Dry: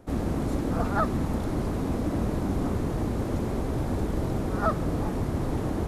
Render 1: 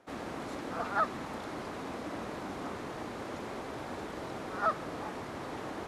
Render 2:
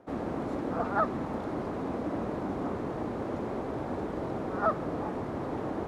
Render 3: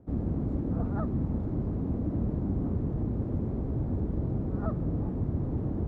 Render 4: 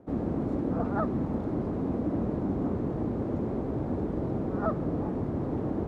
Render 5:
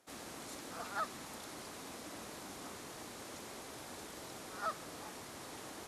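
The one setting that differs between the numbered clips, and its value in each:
band-pass filter, frequency: 2.2 kHz, 820 Hz, 110 Hz, 310 Hz, 7 kHz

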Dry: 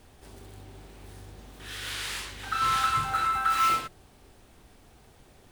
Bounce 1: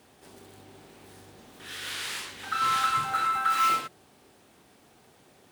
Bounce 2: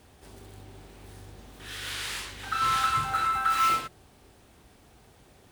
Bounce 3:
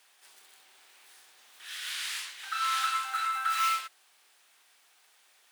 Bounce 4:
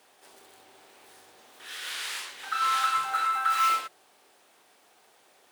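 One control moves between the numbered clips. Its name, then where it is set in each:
high-pass, cutoff frequency: 160 Hz, 45 Hz, 1.5 kHz, 560 Hz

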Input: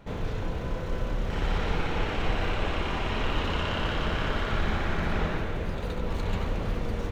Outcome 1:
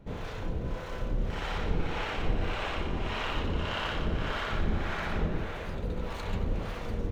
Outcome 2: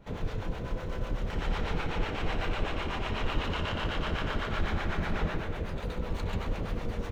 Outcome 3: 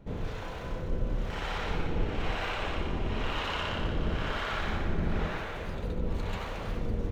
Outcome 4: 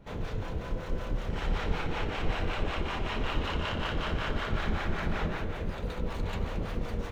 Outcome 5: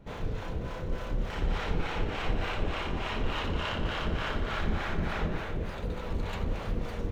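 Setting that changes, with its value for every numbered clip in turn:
harmonic tremolo, rate: 1.7 Hz, 8 Hz, 1 Hz, 5.3 Hz, 3.4 Hz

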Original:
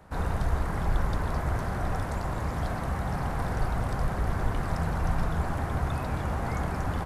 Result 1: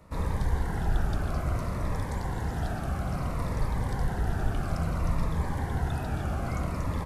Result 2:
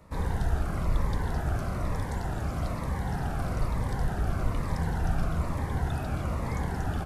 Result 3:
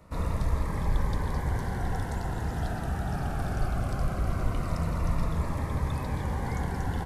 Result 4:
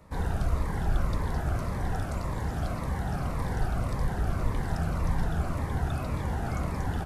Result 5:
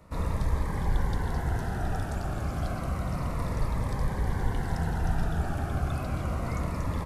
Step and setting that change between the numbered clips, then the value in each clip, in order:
Shepard-style phaser, rate: 0.59 Hz, 1.1 Hz, 0.2 Hz, 1.8 Hz, 0.3 Hz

